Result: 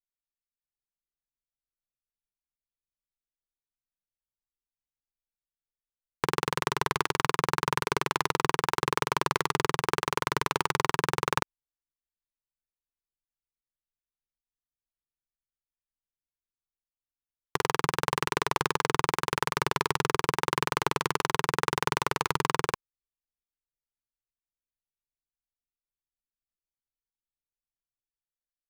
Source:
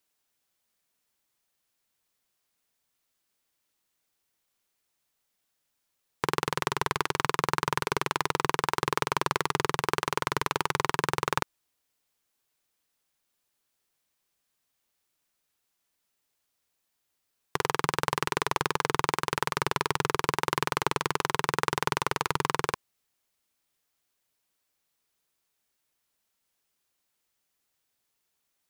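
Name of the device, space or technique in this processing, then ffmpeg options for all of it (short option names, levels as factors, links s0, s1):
voice memo with heavy noise removal: -af "anlmdn=0.000398,dynaudnorm=f=120:g=13:m=1.78,volume=0.75"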